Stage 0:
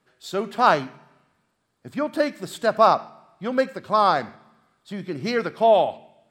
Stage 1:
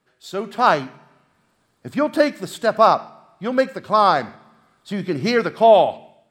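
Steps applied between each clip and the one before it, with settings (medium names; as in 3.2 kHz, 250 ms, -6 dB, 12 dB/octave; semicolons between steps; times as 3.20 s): level rider gain up to 10.5 dB; trim -1 dB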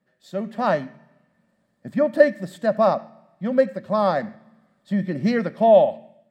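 small resonant body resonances 200/560/1800 Hz, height 16 dB, ringing for 35 ms; trim -11.5 dB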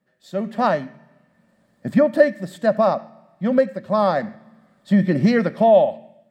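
recorder AGC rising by 7.3 dB/s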